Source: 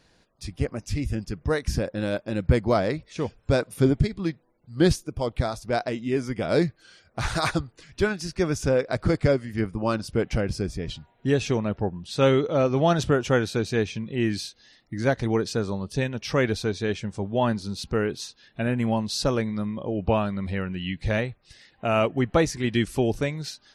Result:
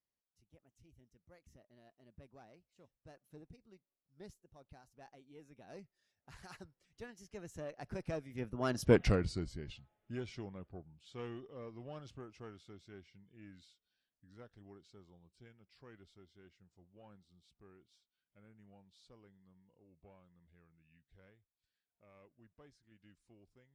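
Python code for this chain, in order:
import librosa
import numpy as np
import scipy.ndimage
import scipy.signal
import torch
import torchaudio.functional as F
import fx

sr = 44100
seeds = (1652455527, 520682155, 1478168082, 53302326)

y = fx.diode_clip(x, sr, knee_db=-12.5)
y = fx.doppler_pass(y, sr, speed_mps=43, closest_m=5.2, pass_at_s=8.96)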